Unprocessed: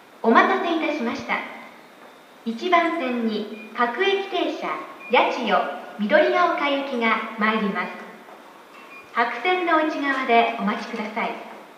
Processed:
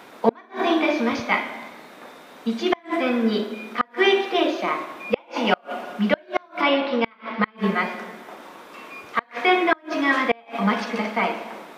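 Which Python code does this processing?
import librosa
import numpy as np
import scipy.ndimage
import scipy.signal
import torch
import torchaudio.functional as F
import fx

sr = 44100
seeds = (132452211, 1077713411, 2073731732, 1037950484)

y = fx.steep_lowpass(x, sr, hz=5400.0, slope=72, at=(6.61, 7.56), fade=0.02)
y = fx.gate_flip(y, sr, shuts_db=-9.0, range_db=-34)
y = y * librosa.db_to_amplitude(3.0)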